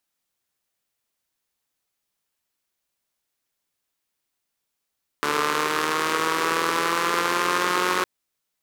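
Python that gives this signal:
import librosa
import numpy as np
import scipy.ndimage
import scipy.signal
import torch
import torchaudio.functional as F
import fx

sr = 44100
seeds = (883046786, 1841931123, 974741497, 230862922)

y = fx.engine_four_rev(sr, seeds[0], length_s=2.81, rpm=4400, resonances_hz=(430.0, 1100.0), end_rpm=5500)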